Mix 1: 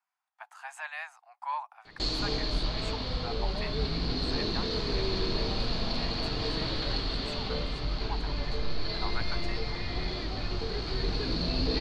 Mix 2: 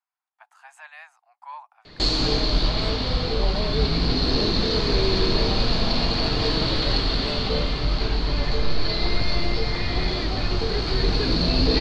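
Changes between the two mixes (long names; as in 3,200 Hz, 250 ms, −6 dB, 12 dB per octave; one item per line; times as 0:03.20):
speech −5.0 dB
background +9.0 dB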